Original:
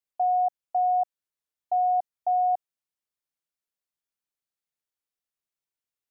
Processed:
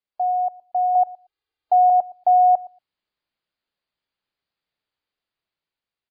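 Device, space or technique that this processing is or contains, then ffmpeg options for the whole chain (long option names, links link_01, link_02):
low-bitrate web radio: -filter_complex "[0:a]asettb=1/sr,asplit=3[link_01][link_02][link_03];[link_01]atrim=end=0.954[link_04];[link_02]atrim=start=0.95:end=1.9,asetpts=PTS-STARTPTS,afade=type=in:duration=0.004:curve=qsin,afade=type=out:start_time=0.946:duration=0.004:curve=qsin,aecho=1:1:2.5:0.86,atrim=end_sample=41895[link_05];[link_03]atrim=start=1.896[link_06];[link_04][link_05]acrossfade=duration=0.004:curve1=hsin:curve2=qsin[link_07];[link_07][link_06]acrossfade=duration=0.004:curve1=qsin:curve2=hsin,asplit=2[link_08][link_09];[link_09]adelay=116,lowpass=frequency=820:poles=1,volume=-19dB,asplit=2[link_10][link_11];[link_11]adelay=116,lowpass=frequency=820:poles=1,volume=0.15[link_12];[link_08][link_10][link_12]amix=inputs=3:normalize=0,dynaudnorm=framelen=610:gausssize=5:maxgain=8dB,alimiter=limit=-12.5dB:level=0:latency=1:release=21,volume=2.5dB" -ar 11025 -c:a libmp3lame -b:a 24k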